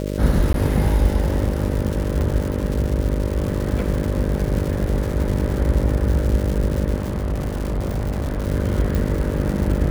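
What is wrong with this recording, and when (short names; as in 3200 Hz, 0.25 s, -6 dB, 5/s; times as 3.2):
buzz 50 Hz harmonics 12 -25 dBFS
crackle 270/s -25 dBFS
0.53–0.54 gap 12 ms
2.21 gap 2.1 ms
6.96–8.46 clipped -19 dBFS
8.95 pop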